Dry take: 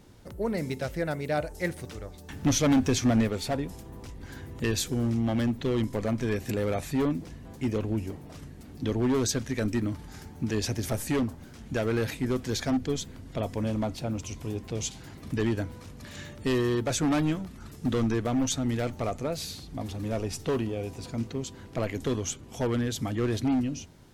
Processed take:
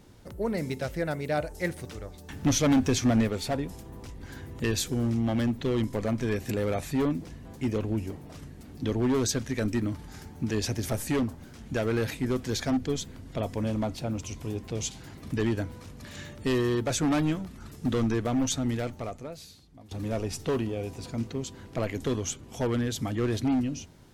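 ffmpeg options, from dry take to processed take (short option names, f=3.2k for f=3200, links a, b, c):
-filter_complex "[0:a]asplit=2[a][b];[a]atrim=end=19.91,asetpts=PTS-STARTPTS,afade=t=out:st=18.67:d=1.24:c=qua:silence=0.149624[c];[b]atrim=start=19.91,asetpts=PTS-STARTPTS,afade=t=in:d=0.004:c=hsin:silence=0.149624[d];[c][d]concat=n=2:v=0:a=1"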